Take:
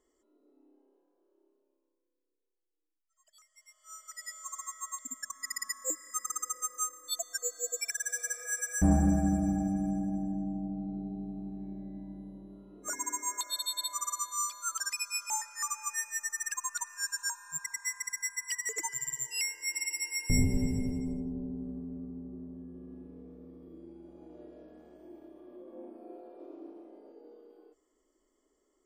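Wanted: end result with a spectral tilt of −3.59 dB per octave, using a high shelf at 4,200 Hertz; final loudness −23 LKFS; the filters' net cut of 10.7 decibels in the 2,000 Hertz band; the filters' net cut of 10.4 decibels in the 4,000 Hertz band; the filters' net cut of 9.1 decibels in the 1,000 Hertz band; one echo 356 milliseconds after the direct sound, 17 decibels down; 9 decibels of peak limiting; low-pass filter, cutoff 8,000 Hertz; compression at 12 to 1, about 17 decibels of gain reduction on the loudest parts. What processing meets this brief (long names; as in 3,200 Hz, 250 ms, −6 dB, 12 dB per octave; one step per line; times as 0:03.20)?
low-pass filter 8,000 Hz
parametric band 1,000 Hz −9 dB
parametric band 2,000 Hz −7 dB
parametric band 4,000 Hz −7 dB
high-shelf EQ 4,200 Hz −7 dB
downward compressor 12 to 1, threshold −39 dBFS
brickwall limiter −35.5 dBFS
single-tap delay 356 ms −17 dB
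level +23 dB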